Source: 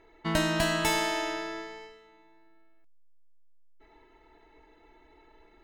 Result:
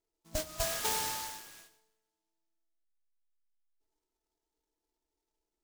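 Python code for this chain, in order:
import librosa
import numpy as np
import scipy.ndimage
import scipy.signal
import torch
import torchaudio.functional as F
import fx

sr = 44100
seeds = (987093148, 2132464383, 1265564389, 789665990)

y = fx.dead_time(x, sr, dead_ms=0.081)
y = fx.noise_reduce_blind(y, sr, reduce_db=27)
y = np.repeat(y[::4], 4)[:len(y)]
y = fx.rev_schroeder(y, sr, rt60_s=0.85, comb_ms=29, drr_db=12.5)
y = fx.noise_mod_delay(y, sr, seeds[0], noise_hz=5500.0, depth_ms=0.14)
y = y * librosa.db_to_amplitude(-2.5)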